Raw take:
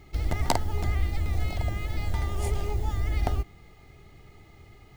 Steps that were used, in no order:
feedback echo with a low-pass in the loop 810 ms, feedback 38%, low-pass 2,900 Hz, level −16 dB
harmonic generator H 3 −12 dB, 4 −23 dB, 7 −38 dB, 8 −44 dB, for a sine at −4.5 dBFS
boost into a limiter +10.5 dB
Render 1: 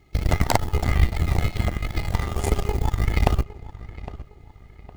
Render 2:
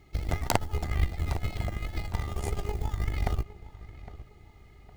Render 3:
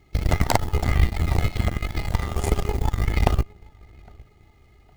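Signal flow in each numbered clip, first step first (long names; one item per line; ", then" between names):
boost into a limiter, then harmonic generator, then feedback echo with a low-pass in the loop
harmonic generator, then feedback echo with a low-pass in the loop, then boost into a limiter
feedback echo with a low-pass in the loop, then boost into a limiter, then harmonic generator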